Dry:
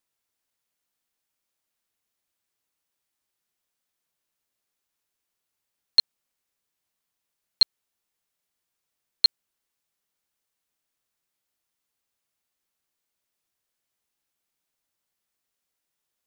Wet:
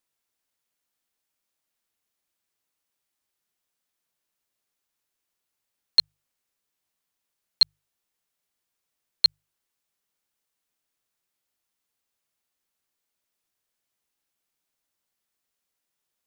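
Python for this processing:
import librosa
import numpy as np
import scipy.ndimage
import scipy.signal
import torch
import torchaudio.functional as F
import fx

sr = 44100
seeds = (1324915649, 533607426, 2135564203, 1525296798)

y = fx.hum_notches(x, sr, base_hz=50, count=3)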